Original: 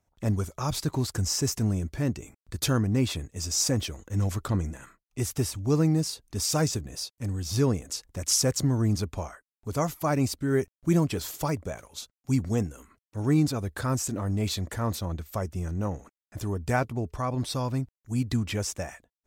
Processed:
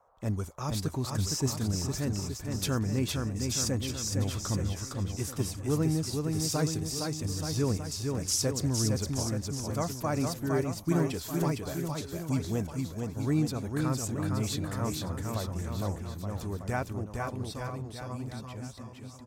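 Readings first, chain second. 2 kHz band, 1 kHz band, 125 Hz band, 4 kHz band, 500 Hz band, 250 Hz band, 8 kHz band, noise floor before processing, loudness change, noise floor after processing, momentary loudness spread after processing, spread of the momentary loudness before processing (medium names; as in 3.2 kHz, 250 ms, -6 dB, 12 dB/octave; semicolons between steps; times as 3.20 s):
-3.5 dB, -3.5 dB, -3.0 dB, -3.0 dB, -3.0 dB, -3.0 dB, -3.0 dB, under -85 dBFS, -3.5 dB, -44 dBFS, 8 LU, 11 LU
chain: fade out at the end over 2.93 s; bouncing-ball echo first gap 460 ms, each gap 0.9×, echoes 5; band noise 480–1200 Hz -61 dBFS; trim -5 dB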